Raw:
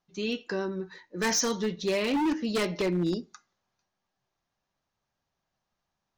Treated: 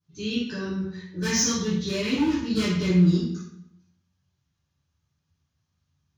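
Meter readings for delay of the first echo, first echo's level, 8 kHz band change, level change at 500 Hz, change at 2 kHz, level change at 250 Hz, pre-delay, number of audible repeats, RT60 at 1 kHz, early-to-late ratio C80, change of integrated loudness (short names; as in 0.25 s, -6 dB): none, none, +4.5 dB, -1.5 dB, +1.0 dB, +6.5 dB, 3 ms, none, 0.65 s, 5.0 dB, +4.5 dB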